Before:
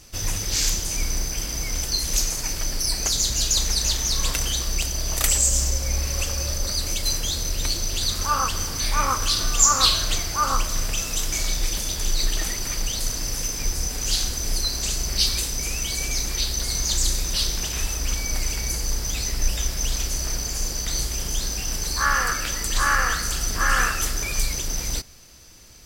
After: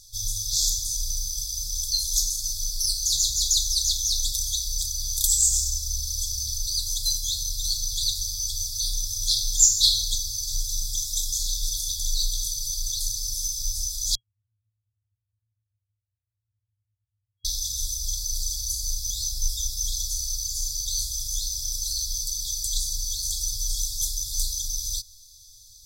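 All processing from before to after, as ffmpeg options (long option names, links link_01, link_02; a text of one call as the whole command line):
ffmpeg -i in.wav -filter_complex "[0:a]asettb=1/sr,asplit=3[link_01][link_02][link_03];[link_01]atrim=end=14.154[link_04];[link_02]atrim=start=14.15:end=17.45,asetpts=PTS-STARTPTS,afade=type=in:duration=0.004:curve=qsin,afade=type=out:start_time=3.296:duration=0.004:curve=qsin,asuperpass=centerf=210:order=8:qfactor=0.94,aemphasis=mode=production:type=riaa[link_05];[link_03]atrim=start=17.446[link_06];[link_04][link_05]acrossfade=duration=0.004:curve1=hsin:curve2=qsin[link_07];[link_07][link_06]acrossfade=duration=0.004:curve1=qsin:curve2=hsin,equalizer=frequency=63:width_type=o:width=2.2:gain=-9.5,afftfilt=real='re*(1-between(b*sr/4096,110,3300))':imag='im*(1-between(b*sr/4096,110,3300))':win_size=4096:overlap=0.75" out.wav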